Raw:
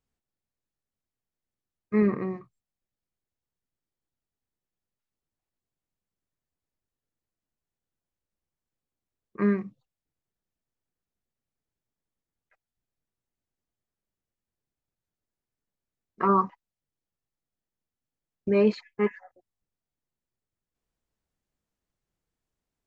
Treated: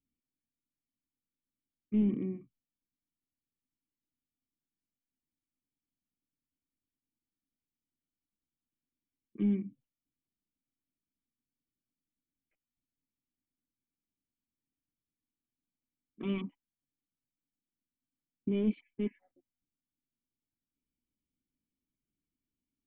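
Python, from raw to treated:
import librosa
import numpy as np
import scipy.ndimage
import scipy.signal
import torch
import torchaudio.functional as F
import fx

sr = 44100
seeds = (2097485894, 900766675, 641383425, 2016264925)

y = np.clip(10.0 ** (21.5 / 20.0) * x, -1.0, 1.0) / 10.0 ** (21.5 / 20.0)
y = fx.formant_cascade(y, sr, vowel='i')
y = y * 10.0 ** (5.0 / 20.0)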